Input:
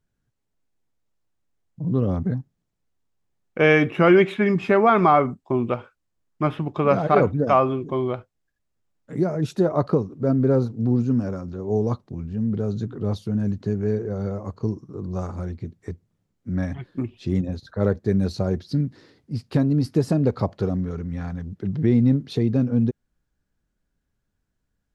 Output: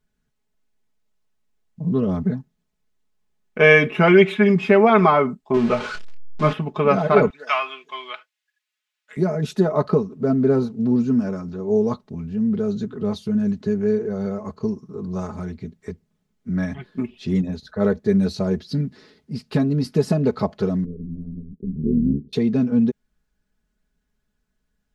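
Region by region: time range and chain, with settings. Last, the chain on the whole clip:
0:05.54–0:06.53: converter with a step at zero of −28.5 dBFS + Bessel low-pass filter 4,800 Hz, order 4 + double-tracking delay 26 ms −7 dB
0:07.30–0:09.17: high-pass filter 1,400 Hz + parametric band 2,700 Hz +8 dB 1.7 octaves
0:20.84–0:22.33: inverse Chebyshev low-pass filter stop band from 780 Hz + amplitude modulation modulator 76 Hz, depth 70%
whole clip: parametric band 2,800 Hz +3 dB 2 octaves; comb filter 4.7 ms, depth 72%

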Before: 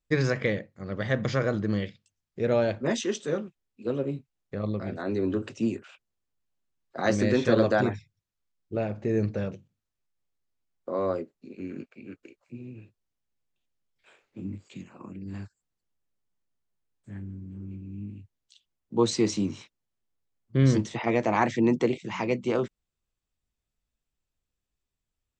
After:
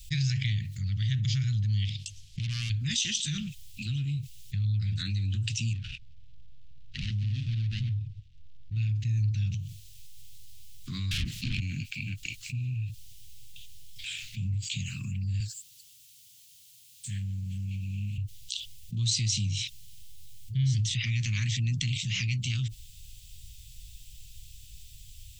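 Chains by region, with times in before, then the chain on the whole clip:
0:01.85–0:02.70: phase distortion by the signal itself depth 0.53 ms + low-pass filter 6,800 Hz + downward compressor 3 to 1, threshold −35 dBFS
0:05.73–0:08.76: running median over 41 samples + Gaussian smoothing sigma 1.8 samples + downward compressor 1.5 to 1, threshold −43 dBFS
0:11.11–0:11.60: tilt shelving filter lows +5 dB, about 670 Hz + mid-hump overdrive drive 39 dB, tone 1,600 Hz, clips at −16.5 dBFS
0:15.40–0:18.18: high-pass filter 170 Hz + high-shelf EQ 2,000 Hz +8.5 dB + expander for the loud parts, over −52 dBFS
whole clip: Chebyshev band-stop filter 120–3,000 Hz, order 3; dynamic equaliser 110 Hz, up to +4 dB, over −48 dBFS, Q 5.4; envelope flattener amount 70%; level −1.5 dB

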